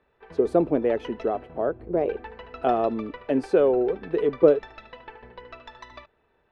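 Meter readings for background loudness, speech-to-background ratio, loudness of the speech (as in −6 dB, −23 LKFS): −44.0 LKFS, 19.5 dB, −24.5 LKFS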